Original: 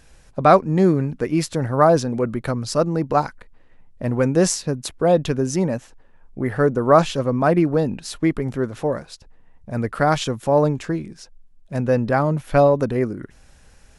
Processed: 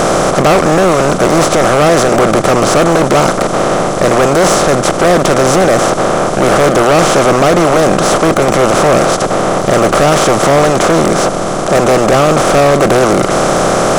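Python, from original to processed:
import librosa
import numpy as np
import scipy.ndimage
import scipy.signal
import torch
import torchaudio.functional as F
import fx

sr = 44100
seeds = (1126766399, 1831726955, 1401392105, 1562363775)

y = fx.bin_compress(x, sr, power=0.2)
y = np.clip(y, -10.0 ** (-8.5 / 20.0), 10.0 ** (-8.5 / 20.0))
y = y * librosa.db_to_amplitude(4.0)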